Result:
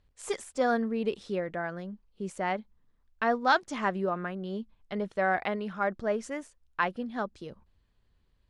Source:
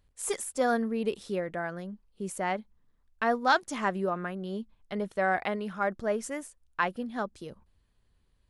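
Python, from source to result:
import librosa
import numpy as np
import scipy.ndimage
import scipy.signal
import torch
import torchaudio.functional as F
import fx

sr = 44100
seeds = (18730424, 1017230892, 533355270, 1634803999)

y = scipy.signal.sosfilt(scipy.signal.butter(2, 5800.0, 'lowpass', fs=sr, output='sos'), x)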